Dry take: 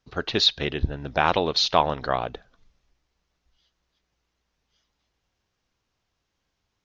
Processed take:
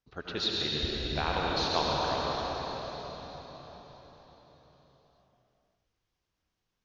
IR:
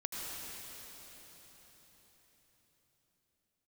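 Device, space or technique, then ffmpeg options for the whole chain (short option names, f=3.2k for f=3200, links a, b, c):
cathedral: -filter_complex "[1:a]atrim=start_sample=2205[a];[0:a][a]afir=irnorm=-1:irlink=0,volume=-9dB"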